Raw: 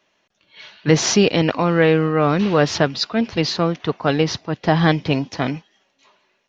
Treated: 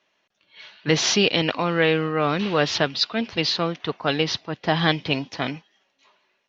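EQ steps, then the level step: tilt +1.5 dB/oct; dynamic EQ 3400 Hz, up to +7 dB, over -35 dBFS, Q 1.3; air absorption 97 m; -3.5 dB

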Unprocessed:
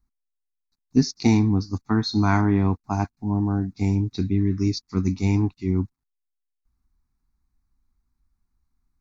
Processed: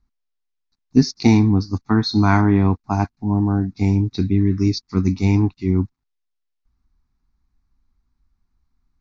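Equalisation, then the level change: LPF 6000 Hz 24 dB/oct; +4.5 dB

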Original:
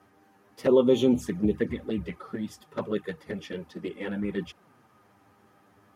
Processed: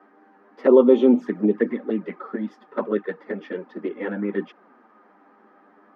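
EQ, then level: steep high-pass 210 Hz 48 dB/oct; air absorption 260 m; resonant high shelf 2200 Hz -6 dB, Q 1.5; +7.0 dB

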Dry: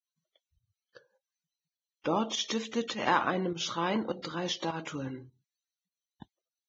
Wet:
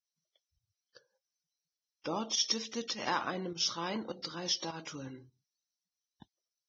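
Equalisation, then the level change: synth low-pass 5400 Hz, resonance Q 8.6; -7.0 dB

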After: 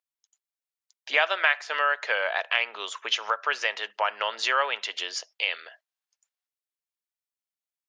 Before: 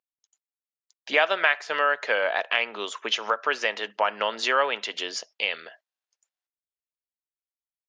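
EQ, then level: Bessel high-pass 730 Hz, order 2; 0.0 dB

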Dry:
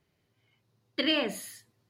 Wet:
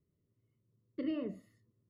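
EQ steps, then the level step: running mean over 55 samples; -2.5 dB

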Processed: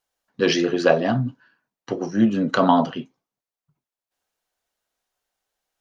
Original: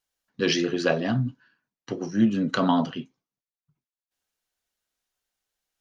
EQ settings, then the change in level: bell 710 Hz +7.5 dB 1.9 oct; +1.0 dB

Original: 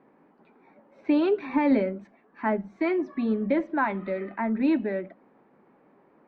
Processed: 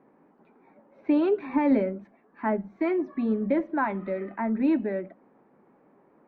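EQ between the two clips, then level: LPF 1800 Hz 6 dB/oct; 0.0 dB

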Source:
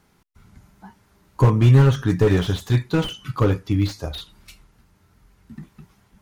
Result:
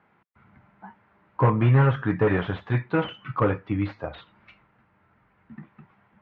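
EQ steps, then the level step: speaker cabinet 170–2300 Hz, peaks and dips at 170 Hz -6 dB, 270 Hz -7 dB, 400 Hz -7 dB; +2.0 dB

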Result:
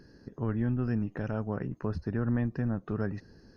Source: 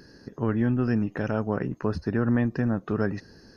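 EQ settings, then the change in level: tilt -1.5 dB/oct; dynamic EQ 320 Hz, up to -3 dB, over -28 dBFS, Q 0.74; -7.0 dB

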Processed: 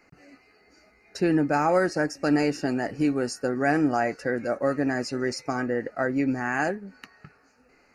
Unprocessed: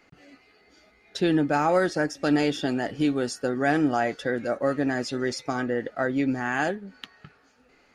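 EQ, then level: Butterworth band-stop 3400 Hz, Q 2.2; 0.0 dB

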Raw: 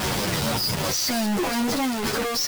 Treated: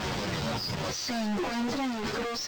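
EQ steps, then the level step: running mean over 4 samples; -6.0 dB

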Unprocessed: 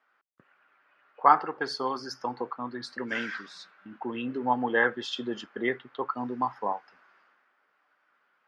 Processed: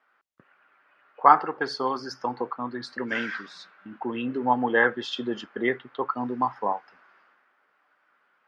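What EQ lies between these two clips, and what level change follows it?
high shelf 6700 Hz -9.5 dB; +3.5 dB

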